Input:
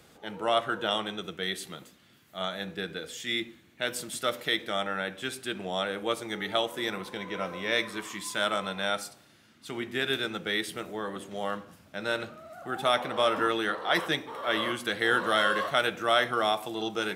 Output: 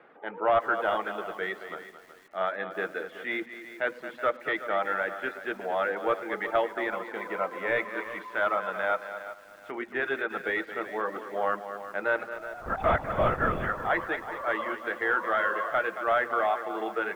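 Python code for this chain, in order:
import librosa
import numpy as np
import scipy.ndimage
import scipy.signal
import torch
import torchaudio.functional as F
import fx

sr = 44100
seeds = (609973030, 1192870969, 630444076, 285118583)

p1 = scipy.signal.sosfilt(scipy.signal.butter(2, 410.0, 'highpass', fs=sr, output='sos'), x)
p2 = p1 + 10.0 ** (-14.0 / 20.0) * np.pad(p1, (int(105 * sr / 1000.0), 0))[:len(p1)]
p3 = fx.dereverb_blind(p2, sr, rt60_s=0.61)
p4 = fx.lpc_vocoder(p3, sr, seeds[0], excitation='whisper', order=10, at=(12.34, 13.69))
p5 = p4 + fx.echo_feedback(p4, sr, ms=223, feedback_pct=18, wet_db=-12.0, dry=0)
p6 = fx.rider(p5, sr, range_db=4, speed_s=2.0)
p7 = 10.0 ** (-22.0 / 20.0) * (np.abs((p6 / 10.0 ** (-22.0 / 20.0) + 3.0) % 4.0 - 2.0) - 1.0)
p8 = p6 + (p7 * 10.0 ** (-5.5 / 20.0))
p9 = scipy.signal.sosfilt(scipy.signal.butter(4, 2000.0, 'lowpass', fs=sr, output='sos'), p8)
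y = fx.echo_crushed(p9, sr, ms=372, feedback_pct=35, bits=8, wet_db=-13.0)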